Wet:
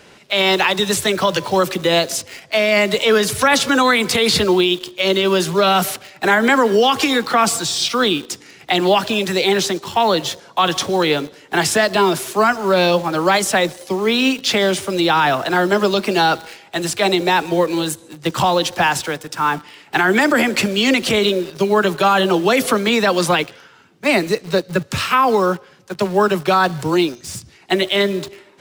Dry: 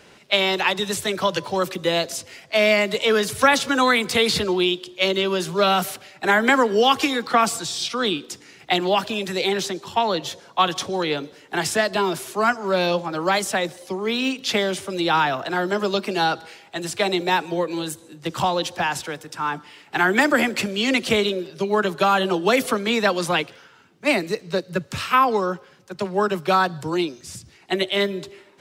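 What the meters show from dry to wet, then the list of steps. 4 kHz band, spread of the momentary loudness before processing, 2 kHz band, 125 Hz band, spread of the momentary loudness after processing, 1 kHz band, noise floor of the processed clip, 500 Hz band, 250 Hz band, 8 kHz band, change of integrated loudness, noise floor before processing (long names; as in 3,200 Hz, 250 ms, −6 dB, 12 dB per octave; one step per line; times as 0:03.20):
+5.0 dB, 11 LU, +4.0 dB, +6.5 dB, 8 LU, +4.5 dB, −47 dBFS, +5.5 dB, +6.0 dB, +7.0 dB, +5.0 dB, −51 dBFS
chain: in parallel at −7 dB: bit reduction 6 bits
on the sum: brickwall limiter −9.5 dBFS, peak gain reduction 9 dB
level +4 dB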